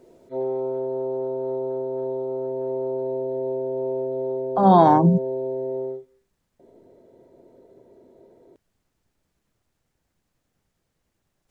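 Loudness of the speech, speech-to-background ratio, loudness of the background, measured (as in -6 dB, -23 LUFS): -17.0 LUFS, 11.0 dB, -28.0 LUFS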